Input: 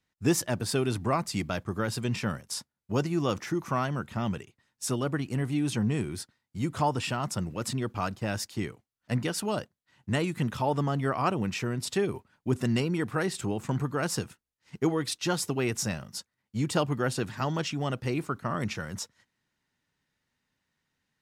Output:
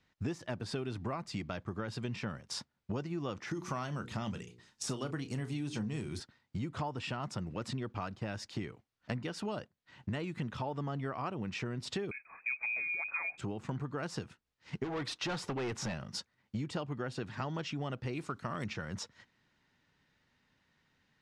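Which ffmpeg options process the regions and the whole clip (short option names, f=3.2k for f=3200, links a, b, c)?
-filter_complex "[0:a]asettb=1/sr,asplit=3[a][b][c];[a]atrim=end=3.514[d];[b]atrim=start=3.51:end=6.2,asetpts=PTS-STARTPTS,afade=t=in:d=0.004:c=qsin,afade=t=out:st=2.686:d=0.004:c=qsin,bass=f=250:g=1,treble=f=4k:g=13,bandreject=f=60:t=h:w=6,bandreject=f=120:t=h:w=6,bandreject=f=180:t=h:w=6,bandreject=f=240:t=h:w=6,bandreject=f=300:t=h:w=6,bandreject=f=360:t=h:w=6,bandreject=f=420:t=h:w=6,bandreject=f=480:t=h:w=6,asplit=2[e][f];[f]adelay=33,volume=-13dB[g];[e][g]amix=inputs=2:normalize=0,atrim=end_sample=118629[h];[c]atrim=start=6.196[i];[d][h]acrossfade=d=0.004:c1=hsin:c2=qsin[j];[j][i]acrossfade=d=0.004:c1=qsin:c2=hsin,asettb=1/sr,asplit=3[k][l][m];[k]atrim=end=12.114[n];[l]atrim=start=12.11:end=13.38,asetpts=PTS-STARTPTS,afade=t=in:d=0.004:c=qsin,afade=t=out:st=1.266:d=0.004:c=qsin,asubboost=boost=8.5:cutoff=190,acompressor=mode=upward:threshold=-43dB:ratio=2.5:attack=3.2:release=140:knee=2.83:detection=peak,lowpass=f=2.2k:t=q:w=0.5098,lowpass=f=2.2k:t=q:w=0.6013,lowpass=f=2.2k:t=q:w=0.9,lowpass=f=2.2k:t=q:w=2.563,afreqshift=-2600[o];[m]atrim=start=13.376[p];[n][o]acrossfade=d=0.004:c1=hsin:c2=qsin[q];[q][p]acrossfade=d=0.004:c1=qsin:c2=hsin,asettb=1/sr,asplit=3[r][s][t];[r]atrim=end=14.844[u];[s]atrim=start=14.84:end=15.94,asetpts=PTS-STARTPTS,afade=t=in:d=0.004:c=qsin,afade=t=out:st=1.096:d=0.004:c=qsin,equalizer=f=1k:w=0.71:g=7,asoftclip=type=hard:threshold=-28dB[v];[t]atrim=start=15.936[w];[u][v]acrossfade=d=0.004:c1=hsin:c2=qsin[x];[x][w]acrossfade=d=0.004:c1=qsin:c2=hsin,asettb=1/sr,asplit=3[y][z][aa];[y]atrim=end=18.134[ab];[z]atrim=start=18.13:end=18.66,asetpts=PTS-STARTPTS,afade=t=in:d=0.004:c=qsin,afade=t=out:st=0.526:d=0.004:c=qsin,lowpass=10k,aemphasis=mode=production:type=75fm,aeval=exprs='clip(val(0),-1,0.0631)':c=same[ac];[aa]atrim=start=18.656[ad];[ab][ac]acrossfade=d=0.004:c1=hsin:c2=qsin[ae];[ae][ad]acrossfade=d=0.004:c1=qsin:c2=hsin,deesser=0.55,lowpass=4.8k,acompressor=threshold=-43dB:ratio=6,volume=7dB"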